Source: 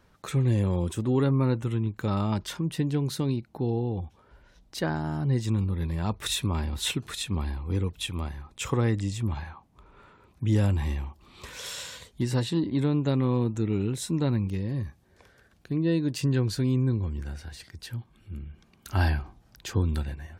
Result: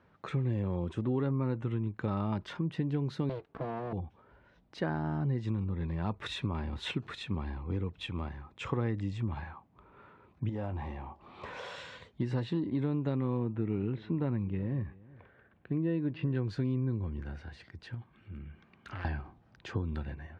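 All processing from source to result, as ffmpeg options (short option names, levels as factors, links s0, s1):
-filter_complex "[0:a]asettb=1/sr,asplit=3[s0][s1][s2];[s0]atrim=end=3.294[s3];[s1]atrim=start=3.29:end=3.93,asetpts=PTS-STARTPTS,afade=t=in:d=0.004:c=qsin,afade=t=out:st=0.636:d=0.004:c=qsin,aecho=1:1:4.5:0.6,atrim=end_sample=28224,aeval=exprs='abs(val(0))':c=same[s4];[s2]atrim=start=3.926[s5];[s3][s4]acrossfade=d=0.004:c1=hsin:c2=qsin[s6];[s6][s5]acrossfade=d=0.004:c1=qsin:c2=hsin,asettb=1/sr,asplit=3[s7][s8][s9];[s7]atrim=end=10.494[s10];[s8]atrim=start=10.49:end=11.76,asetpts=PTS-STARTPTS,afade=t=in:d=0.004:c=qsin,afade=t=out:st=1.266:d=0.004:c=qsin,equalizer=f=730:t=o:w=1.3:g=10.5,acompressor=threshold=0.02:ratio=2.5:attack=3.2:release=140:knee=1:detection=peak,asplit=2[s11][s12];[s12]adelay=23,volume=0.282[s13];[s11][s13]amix=inputs=2:normalize=0,atrim=end_sample=56007[s14];[s9]atrim=start=11.756[s15];[s10][s14]acrossfade=d=0.004:c1=hsin:c2=qsin[s16];[s16][s15]acrossfade=d=0.004:c1=qsin:c2=hsin,asettb=1/sr,asplit=3[s17][s18][s19];[s17]atrim=end=13.374[s20];[s18]atrim=start=13.37:end=16.35,asetpts=PTS-STARTPTS,afade=t=in:d=0.004:c=qsin,afade=t=out:st=2.976:d=0.004:c=qsin,lowpass=f=3200:w=0.5412,lowpass=f=3200:w=1.3066,aecho=1:1:368:0.0708,atrim=end_sample=131418[s21];[s19]atrim=start=16.346[s22];[s20][s21]acrossfade=d=0.004:c1=hsin:c2=qsin[s23];[s23][s22]acrossfade=d=0.004:c1=qsin:c2=hsin,asettb=1/sr,asplit=3[s24][s25][s26];[s24]atrim=end=17.944[s27];[s25]atrim=start=17.94:end=19.05,asetpts=PTS-STARTPTS,afade=t=in:d=0.004:c=qsin,afade=t=out:st=1.106:d=0.004:c=qsin,asoftclip=type=hard:threshold=0.0376,equalizer=f=1900:w=0.78:g=6,acompressor=threshold=0.0178:ratio=6:attack=3.2:release=140:knee=1:detection=peak[s28];[s26]atrim=start=19.046[s29];[s27][s28]acrossfade=d=0.004:c1=hsin:c2=qsin[s30];[s30][s29]acrossfade=d=0.004:c1=qsin:c2=hsin,lowpass=2400,acompressor=threshold=0.0501:ratio=6,highpass=84,volume=0.841"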